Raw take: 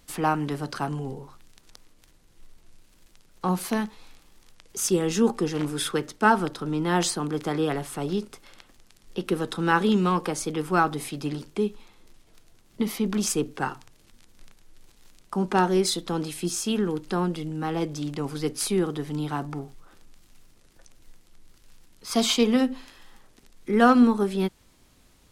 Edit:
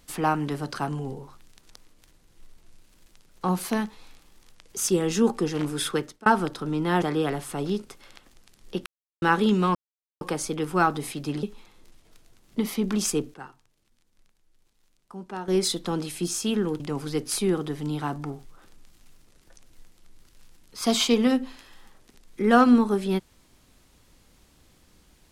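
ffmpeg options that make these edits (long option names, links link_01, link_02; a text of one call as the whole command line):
ffmpeg -i in.wav -filter_complex "[0:a]asplit=10[link_01][link_02][link_03][link_04][link_05][link_06][link_07][link_08][link_09][link_10];[link_01]atrim=end=6.26,asetpts=PTS-STARTPTS,afade=type=out:start_time=5.99:duration=0.27[link_11];[link_02]atrim=start=6.26:end=7.022,asetpts=PTS-STARTPTS,afade=type=in:duration=0.004:curve=hsin[link_12];[link_03]atrim=start=7.448:end=9.29,asetpts=PTS-STARTPTS,afade=type=out:start_time=1.838:duration=0.004:curve=hsin[link_13];[link_04]atrim=start=9.29:end=9.65,asetpts=PTS-STARTPTS,volume=0[link_14];[link_05]atrim=start=9.65:end=10.18,asetpts=PTS-STARTPTS,afade=type=in:duration=0.004:curve=hsin,afade=type=out:start_time=0.526:duration=0.004:curve=hsin,apad=pad_dur=0.46[link_15];[link_06]atrim=start=10.18:end=11.402,asetpts=PTS-STARTPTS,afade=type=in:duration=0.004:curve=hsin[link_16];[link_07]atrim=start=11.648:end=13.56,asetpts=PTS-STARTPTS,afade=type=out:start_time=1.632:duration=0.28:curve=log:silence=0.211349[link_17];[link_08]atrim=start=13.56:end=15.7,asetpts=PTS-STARTPTS,volume=-13.5dB[link_18];[link_09]atrim=start=15.7:end=17.022,asetpts=PTS-STARTPTS,afade=type=in:duration=0.28:curve=log:silence=0.211349[link_19];[link_10]atrim=start=18.088[link_20];[link_11][link_12]concat=n=2:v=0:a=1[link_21];[link_13][link_14][link_15][link_16]concat=n=4:v=0:a=1[link_22];[link_21][link_22]acrossfade=duration=0.004:curve1=hsin:curve2=hsin[link_23];[link_17][link_18][link_19]concat=n=3:v=0:a=1[link_24];[link_23][link_24]acrossfade=duration=0.004:curve1=hsin:curve2=hsin[link_25];[link_25][link_20]acrossfade=duration=0.004:curve1=hsin:curve2=hsin" out.wav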